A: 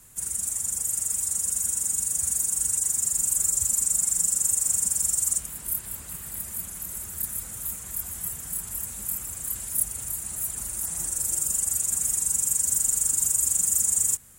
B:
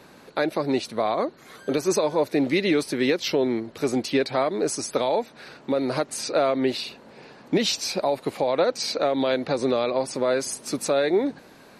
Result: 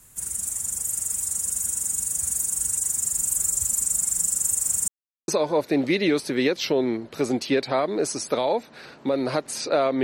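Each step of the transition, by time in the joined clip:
A
0:04.88–0:05.28: silence
0:05.28: continue with B from 0:01.91

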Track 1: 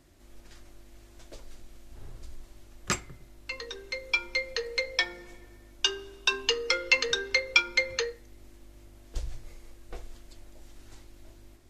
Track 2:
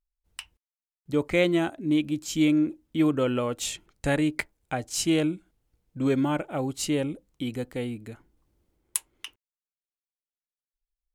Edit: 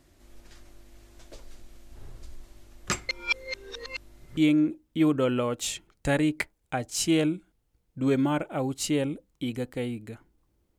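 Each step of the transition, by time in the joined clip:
track 1
0:03.09–0:04.37: reverse
0:04.37: continue with track 2 from 0:02.36

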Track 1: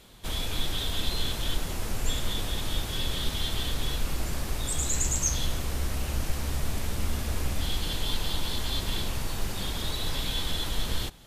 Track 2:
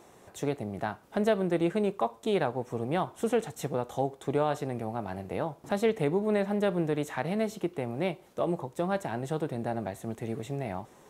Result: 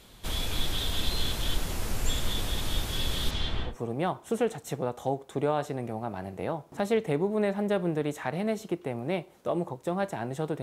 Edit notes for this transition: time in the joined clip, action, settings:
track 1
0:03.30–0:03.76: low-pass filter 6,500 Hz → 1,300 Hz
0:03.70: continue with track 2 from 0:02.62, crossfade 0.12 s

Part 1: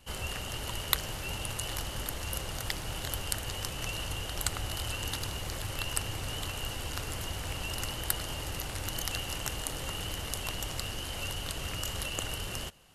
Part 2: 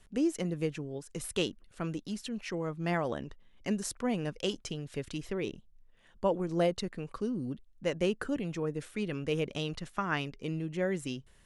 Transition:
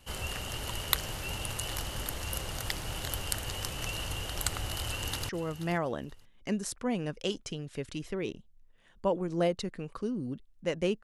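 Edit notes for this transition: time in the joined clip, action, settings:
part 1
0:04.85–0:05.29: delay throw 480 ms, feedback 20%, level −14.5 dB
0:05.29: continue with part 2 from 0:02.48

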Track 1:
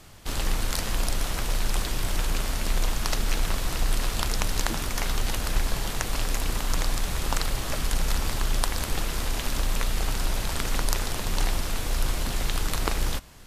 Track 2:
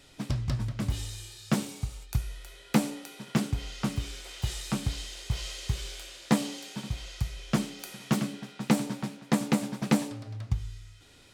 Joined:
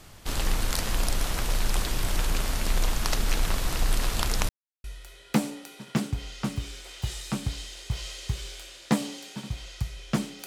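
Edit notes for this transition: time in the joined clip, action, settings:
track 1
0:04.49–0:04.84: silence
0:04.84: continue with track 2 from 0:02.24

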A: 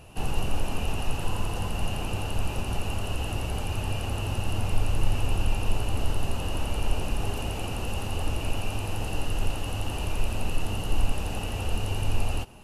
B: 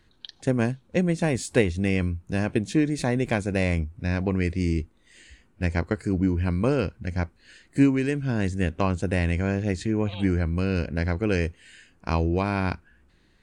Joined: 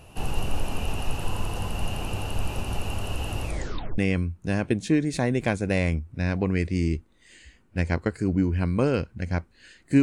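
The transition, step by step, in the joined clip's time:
A
0:03.43: tape stop 0.55 s
0:03.98: continue with B from 0:01.83

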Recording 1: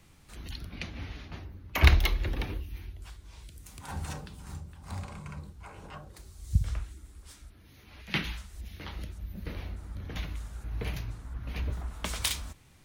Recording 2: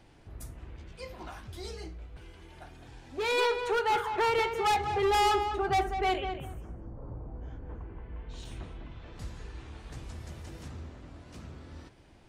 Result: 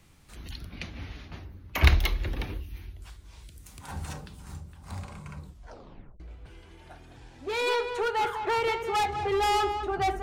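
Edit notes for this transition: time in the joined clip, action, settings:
recording 1
0:05.43: tape stop 0.77 s
0:06.20: continue with recording 2 from 0:01.91

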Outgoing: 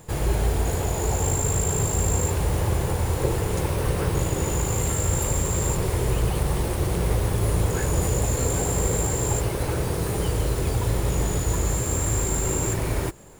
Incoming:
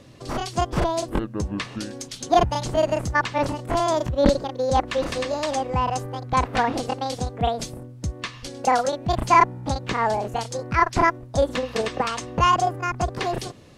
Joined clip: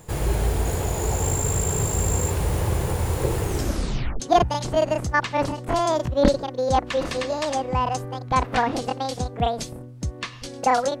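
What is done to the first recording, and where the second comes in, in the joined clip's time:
outgoing
0:03.43: tape stop 0.77 s
0:04.20: continue with incoming from 0:02.21

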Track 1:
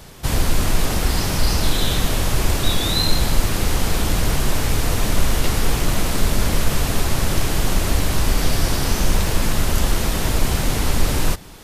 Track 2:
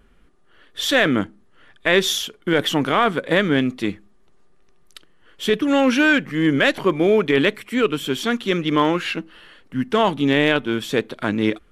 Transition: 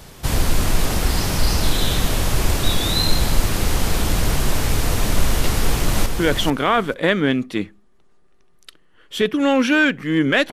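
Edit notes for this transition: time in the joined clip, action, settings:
track 1
0:05.50–0:06.06: delay throw 440 ms, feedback 15%, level −6 dB
0:06.06: continue with track 2 from 0:02.34

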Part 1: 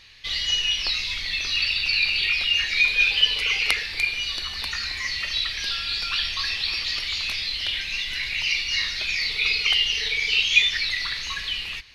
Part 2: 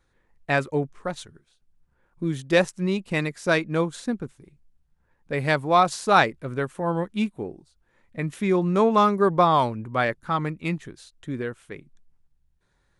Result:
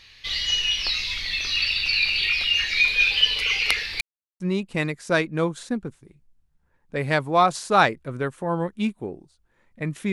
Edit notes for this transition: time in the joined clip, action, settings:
part 1
0:04.01–0:04.40: silence
0:04.40: continue with part 2 from 0:02.77

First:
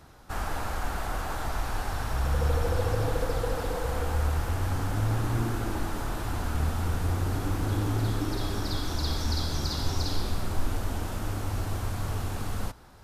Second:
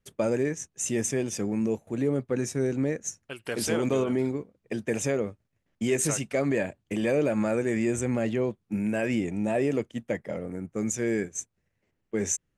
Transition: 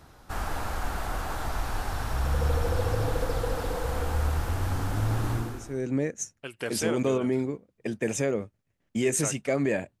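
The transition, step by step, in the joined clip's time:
first
0:05.62: continue with second from 0:02.48, crossfade 0.62 s quadratic

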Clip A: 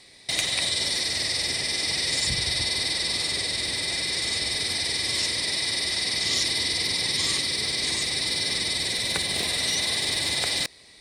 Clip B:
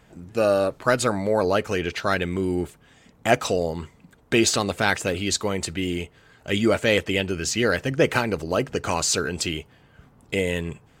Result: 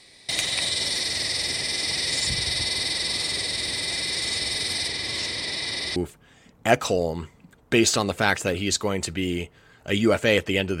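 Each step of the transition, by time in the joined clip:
clip A
0:04.88–0:05.96: high-shelf EQ 6,500 Hz −10 dB
0:05.96: continue with clip B from 0:02.56

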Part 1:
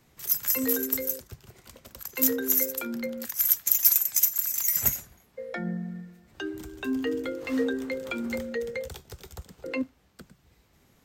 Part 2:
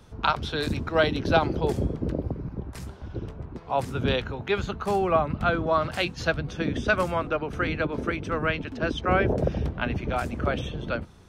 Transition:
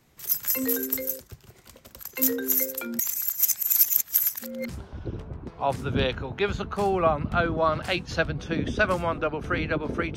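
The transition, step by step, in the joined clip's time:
part 1
0:02.99–0:04.69: reverse
0:04.69: continue with part 2 from 0:02.78

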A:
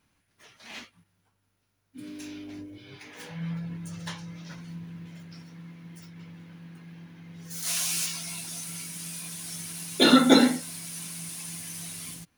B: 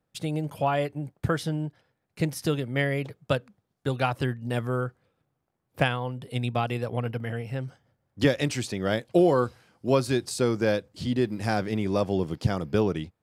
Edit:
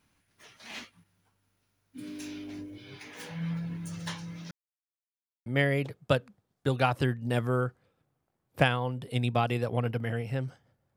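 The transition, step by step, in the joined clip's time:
A
0:04.51–0:05.46: silence
0:05.46: continue with B from 0:02.66

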